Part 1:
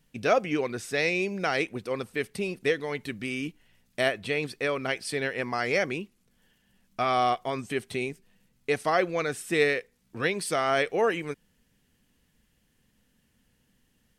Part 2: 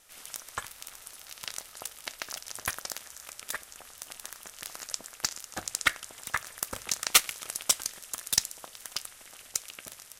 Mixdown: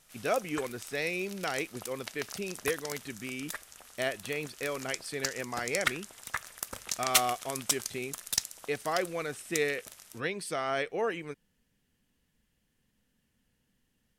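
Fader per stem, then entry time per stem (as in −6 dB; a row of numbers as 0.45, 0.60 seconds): −6.5, −4.0 decibels; 0.00, 0.00 seconds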